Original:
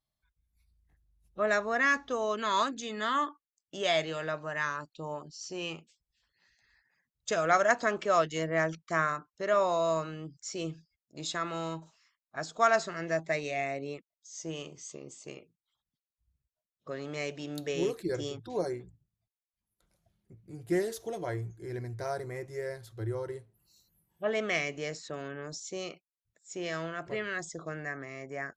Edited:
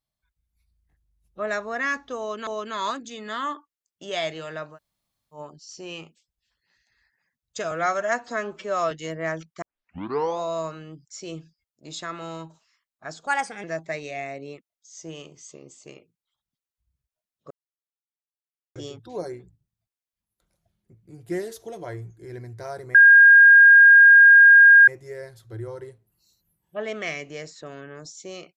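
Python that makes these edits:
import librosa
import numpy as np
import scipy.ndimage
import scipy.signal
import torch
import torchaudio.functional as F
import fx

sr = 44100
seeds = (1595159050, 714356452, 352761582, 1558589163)

y = fx.edit(x, sr, fx.repeat(start_s=2.19, length_s=0.28, count=2),
    fx.room_tone_fill(start_s=4.46, length_s=0.62, crossfade_s=0.1),
    fx.stretch_span(start_s=7.43, length_s=0.8, factor=1.5),
    fx.tape_start(start_s=8.94, length_s=0.78),
    fx.speed_span(start_s=12.59, length_s=0.45, speed=1.23),
    fx.silence(start_s=16.91, length_s=1.25),
    fx.insert_tone(at_s=22.35, length_s=1.93, hz=1620.0, db=-7.5), tone=tone)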